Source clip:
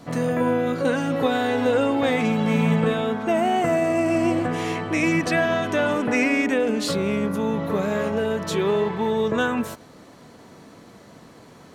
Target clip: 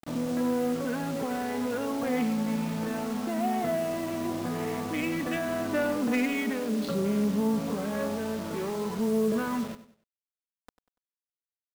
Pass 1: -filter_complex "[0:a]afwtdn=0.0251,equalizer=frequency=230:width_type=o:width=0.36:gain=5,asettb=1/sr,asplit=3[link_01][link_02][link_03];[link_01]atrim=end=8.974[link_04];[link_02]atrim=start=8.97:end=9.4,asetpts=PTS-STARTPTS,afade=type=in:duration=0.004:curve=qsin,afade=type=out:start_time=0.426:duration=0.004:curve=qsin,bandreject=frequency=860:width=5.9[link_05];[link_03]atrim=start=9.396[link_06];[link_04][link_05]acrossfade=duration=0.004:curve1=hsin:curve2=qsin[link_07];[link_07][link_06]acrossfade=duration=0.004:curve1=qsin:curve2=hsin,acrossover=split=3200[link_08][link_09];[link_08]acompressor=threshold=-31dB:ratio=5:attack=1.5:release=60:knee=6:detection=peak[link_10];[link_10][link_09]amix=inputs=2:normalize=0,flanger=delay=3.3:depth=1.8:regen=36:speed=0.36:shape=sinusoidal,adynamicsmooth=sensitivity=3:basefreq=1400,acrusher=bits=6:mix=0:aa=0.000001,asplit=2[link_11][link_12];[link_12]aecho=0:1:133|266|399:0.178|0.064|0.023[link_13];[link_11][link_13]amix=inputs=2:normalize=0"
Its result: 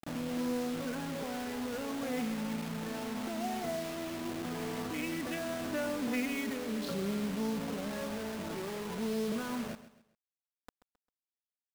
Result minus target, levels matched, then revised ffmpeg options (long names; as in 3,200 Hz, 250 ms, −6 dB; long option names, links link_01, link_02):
echo 37 ms late; downward compressor: peak gain reduction +7.5 dB
-filter_complex "[0:a]afwtdn=0.0251,equalizer=frequency=230:width_type=o:width=0.36:gain=5,asettb=1/sr,asplit=3[link_01][link_02][link_03];[link_01]atrim=end=8.974[link_04];[link_02]atrim=start=8.97:end=9.4,asetpts=PTS-STARTPTS,afade=type=in:duration=0.004:curve=qsin,afade=type=out:start_time=0.426:duration=0.004:curve=qsin,bandreject=frequency=860:width=5.9[link_05];[link_03]atrim=start=9.396[link_06];[link_04][link_05]acrossfade=duration=0.004:curve1=hsin:curve2=qsin[link_07];[link_07][link_06]acrossfade=duration=0.004:curve1=qsin:curve2=hsin,acrossover=split=3200[link_08][link_09];[link_08]acompressor=threshold=-21.5dB:ratio=5:attack=1.5:release=60:knee=6:detection=peak[link_10];[link_10][link_09]amix=inputs=2:normalize=0,flanger=delay=3.3:depth=1.8:regen=36:speed=0.36:shape=sinusoidal,adynamicsmooth=sensitivity=3:basefreq=1400,acrusher=bits=6:mix=0:aa=0.000001,asplit=2[link_11][link_12];[link_12]aecho=0:1:96|192|288:0.178|0.064|0.023[link_13];[link_11][link_13]amix=inputs=2:normalize=0"